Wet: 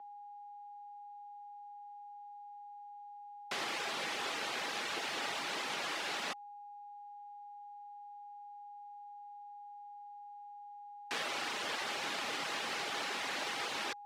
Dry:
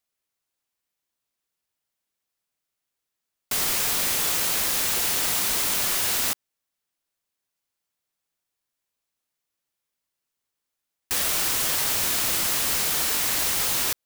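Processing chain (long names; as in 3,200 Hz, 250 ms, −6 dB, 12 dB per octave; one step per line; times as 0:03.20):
reverb reduction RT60 0.58 s
steady tone 860 Hz −43 dBFS
bit-depth reduction 12 bits, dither none
frequency shifter −40 Hz
band-pass filter 270–3,200 Hz
level −4.5 dB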